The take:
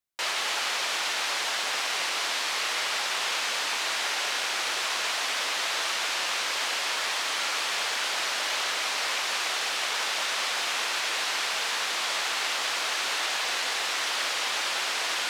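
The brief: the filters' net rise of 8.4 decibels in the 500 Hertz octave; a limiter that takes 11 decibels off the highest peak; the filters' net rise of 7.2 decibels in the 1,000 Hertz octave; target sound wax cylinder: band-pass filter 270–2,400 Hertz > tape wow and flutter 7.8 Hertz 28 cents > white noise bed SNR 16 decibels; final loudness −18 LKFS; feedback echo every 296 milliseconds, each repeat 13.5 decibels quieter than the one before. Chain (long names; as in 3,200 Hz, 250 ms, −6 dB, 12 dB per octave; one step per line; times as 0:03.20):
parametric band 500 Hz +8.5 dB
parametric band 1,000 Hz +7 dB
brickwall limiter −23 dBFS
band-pass filter 270–2,400 Hz
repeating echo 296 ms, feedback 21%, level −13.5 dB
tape wow and flutter 7.8 Hz 28 cents
white noise bed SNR 16 dB
level +14.5 dB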